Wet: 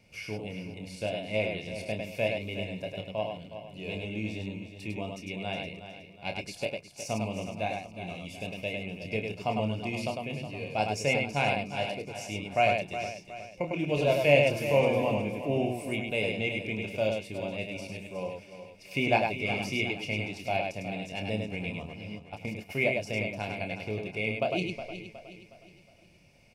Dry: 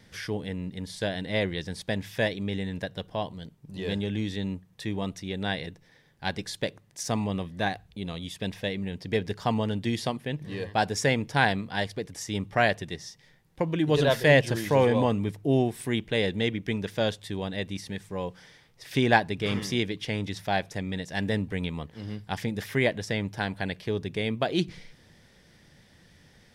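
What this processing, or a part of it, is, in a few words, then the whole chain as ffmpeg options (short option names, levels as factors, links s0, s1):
slapback doubling: -filter_complex "[0:a]asplit=3[s0][s1][s2];[s1]adelay=28,volume=0.447[s3];[s2]adelay=102,volume=0.631[s4];[s0][s3][s4]amix=inputs=3:normalize=0,asplit=3[s5][s6][s7];[s5]afade=t=out:st=22.18:d=0.02[s8];[s6]agate=range=0.126:threshold=0.0355:ratio=16:detection=peak,afade=t=in:st=22.18:d=0.02,afade=t=out:st=22.69:d=0.02[s9];[s7]afade=t=in:st=22.69:d=0.02[s10];[s8][s9][s10]amix=inputs=3:normalize=0,superequalizer=8b=2:10b=0.631:11b=0.282:12b=3.16:13b=0.501,aecho=1:1:365|730|1095|1460:0.282|0.118|0.0497|0.0209,volume=0.422"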